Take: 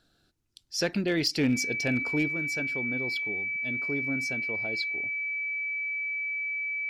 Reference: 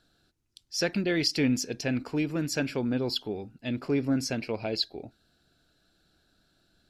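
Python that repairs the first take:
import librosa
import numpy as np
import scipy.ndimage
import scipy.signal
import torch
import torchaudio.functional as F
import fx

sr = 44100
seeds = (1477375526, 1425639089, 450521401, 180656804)

y = fx.fix_declip(x, sr, threshold_db=-18.5)
y = fx.notch(y, sr, hz=2300.0, q=30.0)
y = fx.fix_level(y, sr, at_s=2.28, step_db=7.0)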